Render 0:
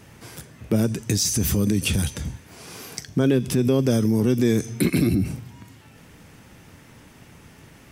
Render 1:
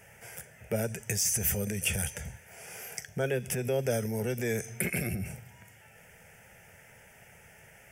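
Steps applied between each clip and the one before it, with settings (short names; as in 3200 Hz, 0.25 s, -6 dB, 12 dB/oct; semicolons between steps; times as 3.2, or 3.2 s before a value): low shelf 270 Hz -11 dB; fixed phaser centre 1100 Hz, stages 6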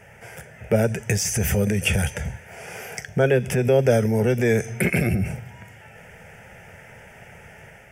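LPF 2400 Hz 6 dB/oct; AGC gain up to 3.5 dB; gain +8.5 dB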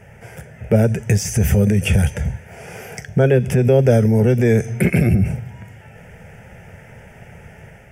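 low shelf 430 Hz +9.5 dB; gain -1 dB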